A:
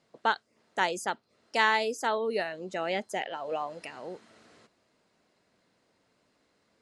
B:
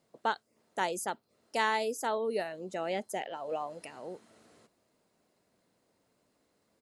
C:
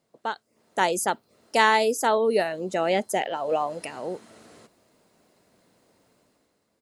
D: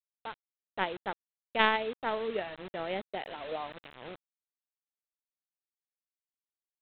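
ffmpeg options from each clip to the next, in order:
ffmpeg -i in.wav -af "firequalizer=gain_entry='entry(600,0);entry(1600,-5);entry(4900,-3);entry(12000,10)':delay=0.05:min_phase=1,volume=-2dB" out.wav
ffmpeg -i in.wav -af "dynaudnorm=framelen=100:gausssize=13:maxgain=10.5dB" out.wav
ffmpeg -i in.wav -af "aeval=exprs='0.596*(cos(1*acos(clip(val(0)/0.596,-1,1)))-cos(1*PI/2))+0.15*(cos(3*acos(clip(val(0)/0.596,-1,1)))-cos(3*PI/2))':channel_layout=same,aresample=8000,acrusher=bits=6:mix=0:aa=0.000001,aresample=44100,volume=-1.5dB" out.wav

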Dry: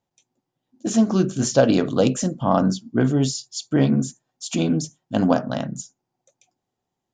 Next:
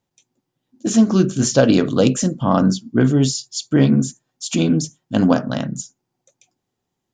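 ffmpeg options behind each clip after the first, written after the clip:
ffmpeg -i in.wav -af "equalizer=frequency=730:width_type=o:width=0.86:gain=-5.5,volume=4.5dB" out.wav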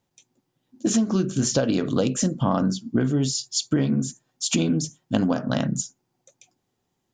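ffmpeg -i in.wav -af "acompressor=threshold=-20dB:ratio=12,volume=2dB" out.wav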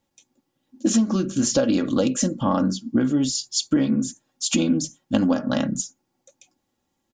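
ffmpeg -i in.wav -af "aecho=1:1:3.6:0.54" out.wav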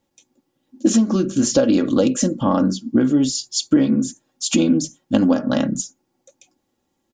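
ffmpeg -i in.wav -af "equalizer=frequency=380:width_type=o:width=1.3:gain=4.5,volume=1.5dB" out.wav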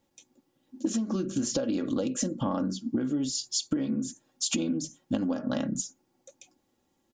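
ffmpeg -i in.wav -af "acompressor=threshold=-25dB:ratio=6,volume=-1.5dB" out.wav

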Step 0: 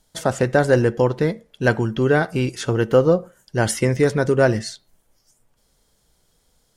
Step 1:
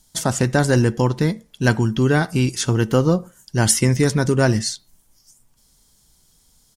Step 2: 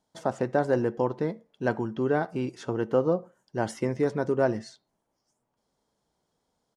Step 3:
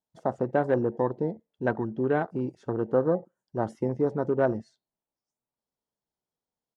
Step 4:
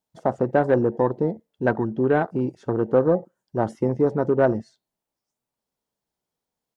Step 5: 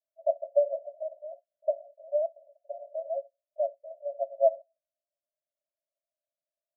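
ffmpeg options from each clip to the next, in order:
ffmpeg -i in.wav -af "firequalizer=gain_entry='entry(240,0);entry(500,-10);entry(950,-2);entry(1400,-5);entry(5600,5)':delay=0.05:min_phase=1,volume=4dB" out.wav
ffmpeg -i in.wav -af "bandpass=frequency=590:width_type=q:width=1.1:csg=0,volume=-3dB" out.wav
ffmpeg -i in.wav -af "afwtdn=0.0158" out.wav
ffmpeg -i in.wav -af "aeval=exprs='0.299*(cos(1*acos(clip(val(0)/0.299,-1,1)))-cos(1*PI/2))+0.00668*(cos(5*acos(clip(val(0)/0.299,-1,1)))-cos(5*PI/2))':channel_layout=same,volume=5dB" out.wav
ffmpeg -i in.wav -af "asuperpass=centerf=620:order=20:qfactor=4.2" out.wav

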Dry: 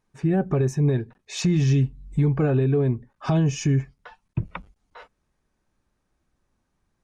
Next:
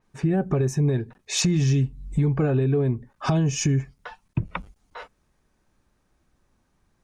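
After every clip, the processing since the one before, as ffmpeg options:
ffmpeg -i in.wav -af "acompressor=threshold=-29dB:ratio=2,adynamicequalizer=threshold=0.00355:dfrequency=5300:dqfactor=0.7:tfrequency=5300:tqfactor=0.7:attack=5:release=100:ratio=0.375:range=3:mode=boostabove:tftype=highshelf,volume=5.5dB" out.wav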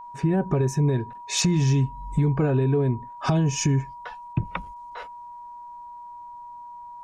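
ffmpeg -i in.wav -af "aeval=exprs='val(0)+0.0126*sin(2*PI*960*n/s)':channel_layout=same" out.wav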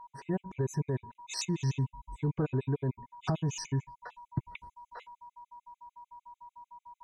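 ffmpeg -i in.wav -af "afftfilt=real='re*gt(sin(2*PI*6.7*pts/sr)*(1-2*mod(floor(b*sr/1024/2000),2)),0)':imag='im*gt(sin(2*PI*6.7*pts/sr)*(1-2*mod(floor(b*sr/1024/2000),2)),0)':win_size=1024:overlap=0.75,volume=-7.5dB" out.wav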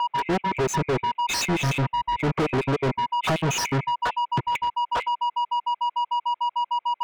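ffmpeg -i in.wav -filter_complex "[0:a]acrossover=split=340|820|1800[link_01][link_02][link_03][link_04];[link_04]aeval=exprs='sgn(val(0))*max(abs(val(0))-0.00266,0)':channel_layout=same[link_05];[link_01][link_02][link_03][link_05]amix=inputs=4:normalize=0,asplit=2[link_06][link_07];[link_07]highpass=frequency=720:poles=1,volume=38dB,asoftclip=type=tanh:threshold=-18dB[link_08];[link_06][link_08]amix=inputs=2:normalize=0,lowpass=frequency=3800:poles=1,volume=-6dB,volume=2.5dB" out.wav

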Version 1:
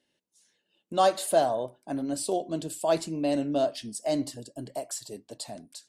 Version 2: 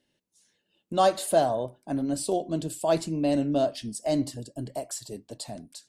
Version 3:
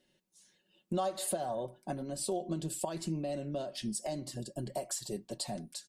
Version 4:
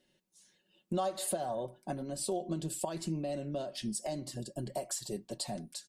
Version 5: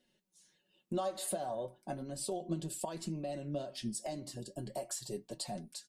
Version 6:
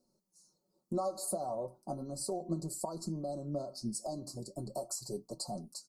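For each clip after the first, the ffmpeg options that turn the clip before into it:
ffmpeg -i in.wav -af "lowshelf=frequency=170:gain=10.5" out.wav
ffmpeg -i in.wav -af "alimiter=limit=-20dB:level=0:latency=1:release=273,acompressor=threshold=-33dB:ratio=6,aecho=1:1:5.4:0.58" out.wav
ffmpeg -i in.wav -af anull out.wav
ffmpeg -i in.wav -af "flanger=delay=4:depth=6.7:regen=62:speed=0.34:shape=triangular,volume=1.5dB" out.wav
ffmpeg -i in.wav -af "asuperstop=centerf=2400:order=20:qfactor=0.85,volume=1dB" out.wav

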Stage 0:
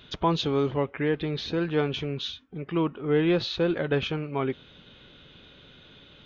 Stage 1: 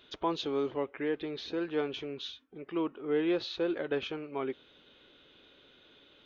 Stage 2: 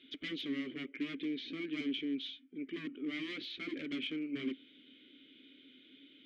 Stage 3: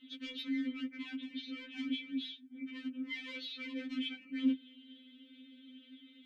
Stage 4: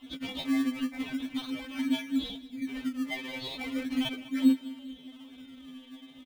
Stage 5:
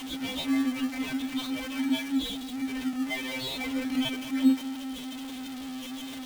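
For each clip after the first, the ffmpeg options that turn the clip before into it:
ffmpeg -i in.wav -af "lowshelf=frequency=230:width_type=q:width=1.5:gain=-9,volume=-7.5dB" out.wav
ffmpeg -i in.wav -filter_complex "[0:a]aeval=exprs='0.0224*(abs(mod(val(0)/0.0224+3,4)-2)-1)':channel_layout=same,asplit=3[link_01][link_02][link_03];[link_01]bandpass=frequency=270:width_type=q:width=8,volume=0dB[link_04];[link_02]bandpass=frequency=2290:width_type=q:width=8,volume=-6dB[link_05];[link_03]bandpass=frequency=3010:width_type=q:width=8,volume=-9dB[link_06];[link_04][link_05][link_06]amix=inputs=3:normalize=0,volume=11.5dB" out.wav
ffmpeg -i in.wav -af "afftfilt=real='re*3.46*eq(mod(b,12),0)':imag='im*3.46*eq(mod(b,12),0)':win_size=2048:overlap=0.75,volume=2dB" out.wav
ffmpeg -i in.wav -filter_complex "[0:a]asplit=2[link_01][link_02];[link_02]acrusher=samples=21:mix=1:aa=0.000001:lfo=1:lforange=21:lforate=0.38,volume=-4.5dB[link_03];[link_01][link_03]amix=inputs=2:normalize=0,aecho=1:1:199|398|597|796:0.126|0.0567|0.0255|0.0115,volume=4.5dB" out.wav
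ffmpeg -i in.wav -af "aeval=exprs='val(0)+0.5*0.0188*sgn(val(0))':channel_layout=same" out.wav

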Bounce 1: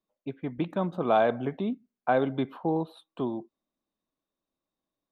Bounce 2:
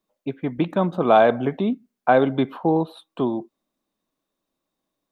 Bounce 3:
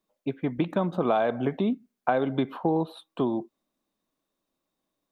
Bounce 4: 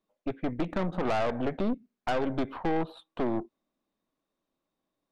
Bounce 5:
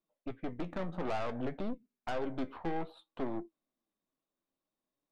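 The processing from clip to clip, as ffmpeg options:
ffmpeg -i in.wav -af "equalizer=frequency=64:width=1.1:gain=-5.5,volume=8dB" out.wav
ffmpeg -i in.wav -af "acompressor=threshold=-19dB:ratio=6,volume=-1.5dB" out.wav
ffmpeg -i in.wav -af "aemphasis=mode=reproduction:type=50kf,aeval=exprs='(tanh(25.1*val(0)+0.75)-tanh(0.75))/25.1':channel_layout=same,volume=3.5dB" out.wav
ffmpeg -i in.wav -af "flanger=delay=5.7:depth=7:regen=62:speed=0.58:shape=triangular,volume=-3.5dB" out.wav

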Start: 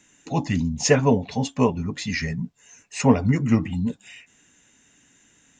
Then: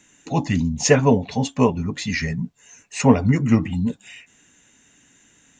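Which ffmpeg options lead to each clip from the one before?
ffmpeg -i in.wav -af "bandreject=frequency=5100:width=19,volume=2.5dB" out.wav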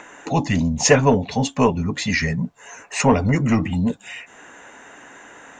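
ffmpeg -i in.wav -filter_complex "[0:a]acrossover=split=470|1500[link_01][link_02][link_03];[link_01]asoftclip=type=tanh:threshold=-17dB[link_04];[link_02]acompressor=mode=upward:threshold=-28dB:ratio=2.5[link_05];[link_04][link_05][link_03]amix=inputs=3:normalize=0,volume=3dB" out.wav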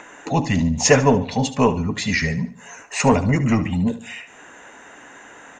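ffmpeg -i in.wav -af "aecho=1:1:73|146|219|292:0.2|0.0798|0.0319|0.0128" out.wav

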